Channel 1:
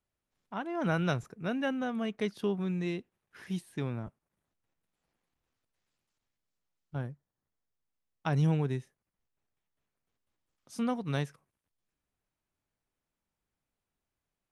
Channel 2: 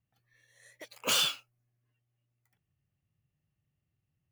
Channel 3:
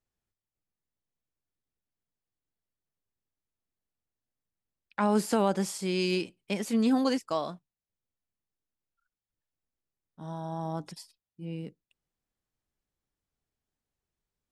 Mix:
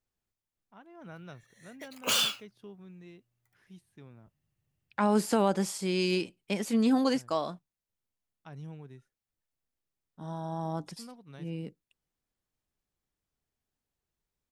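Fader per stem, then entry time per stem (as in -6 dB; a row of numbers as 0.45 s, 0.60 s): -17.0 dB, +0.5 dB, 0.0 dB; 0.20 s, 1.00 s, 0.00 s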